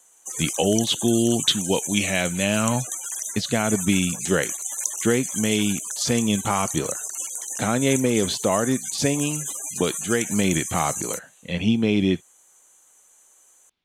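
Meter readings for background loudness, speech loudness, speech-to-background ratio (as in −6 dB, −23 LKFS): −28.0 LKFS, −23.5 LKFS, 4.5 dB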